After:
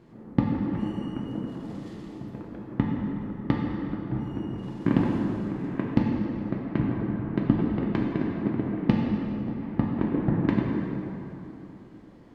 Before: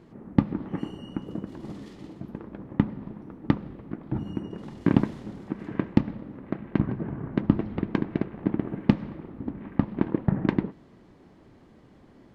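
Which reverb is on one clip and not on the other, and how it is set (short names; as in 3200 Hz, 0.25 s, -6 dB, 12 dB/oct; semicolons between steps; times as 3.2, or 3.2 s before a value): plate-style reverb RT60 3.2 s, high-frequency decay 0.65×, DRR -2 dB; gain -3 dB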